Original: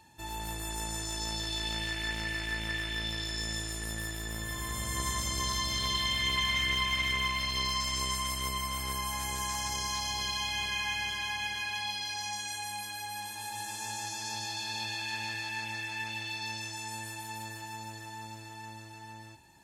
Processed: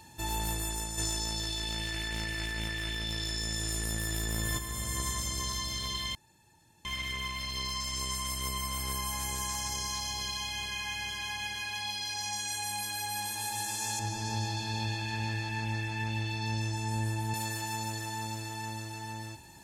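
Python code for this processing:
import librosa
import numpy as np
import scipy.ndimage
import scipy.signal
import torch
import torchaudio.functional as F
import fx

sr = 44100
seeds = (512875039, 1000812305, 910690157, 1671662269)

y = fx.env_flatten(x, sr, amount_pct=100, at=(0.97, 4.57), fade=0.02)
y = fx.tilt_eq(y, sr, slope=-3.0, at=(13.99, 17.34))
y = fx.edit(y, sr, fx.room_tone_fill(start_s=6.15, length_s=0.7), tone=tone)
y = fx.peak_eq(y, sr, hz=440.0, db=2.5, octaves=0.77)
y = fx.rider(y, sr, range_db=10, speed_s=0.5)
y = fx.bass_treble(y, sr, bass_db=4, treble_db=5)
y = y * 10.0 ** (-5.0 / 20.0)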